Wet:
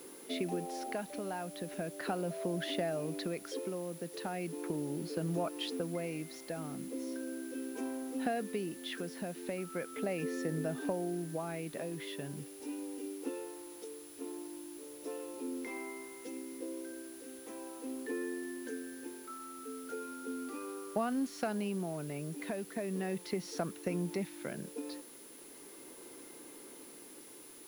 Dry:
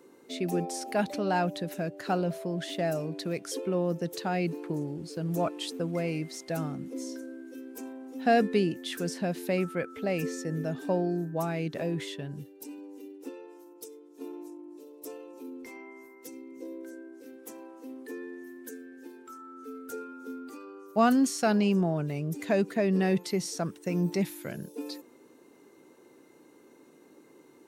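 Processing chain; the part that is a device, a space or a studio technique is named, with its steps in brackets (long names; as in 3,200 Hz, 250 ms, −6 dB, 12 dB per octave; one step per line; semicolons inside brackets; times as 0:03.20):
medium wave at night (band-pass filter 180–3,500 Hz; downward compressor, threshold −35 dBFS, peak gain reduction 16 dB; amplitude tremolo 0.38 Hz, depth 46%; steady tone 10,000 Hz −58 dBFS; white noise bed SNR 18 dB)
level +3.5 dB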